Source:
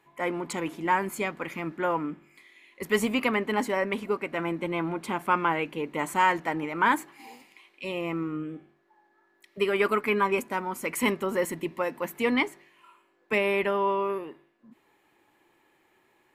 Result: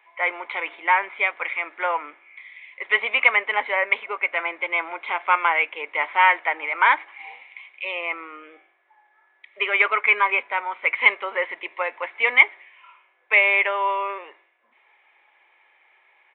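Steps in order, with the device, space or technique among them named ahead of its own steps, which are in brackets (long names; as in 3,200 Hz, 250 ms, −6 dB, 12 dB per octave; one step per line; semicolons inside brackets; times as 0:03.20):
musical greeting card (downsampling to 8,000 Hz; high-pass filter 580 Hz 24 dB per octave; parametric band 2,200 Hz +11.5 dB 0.29 octaves)
level +5 dB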